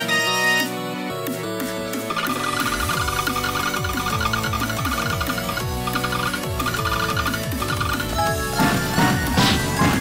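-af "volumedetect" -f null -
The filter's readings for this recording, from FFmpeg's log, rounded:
mean_volume: -21.9 dB
max_volume: -6.7 dB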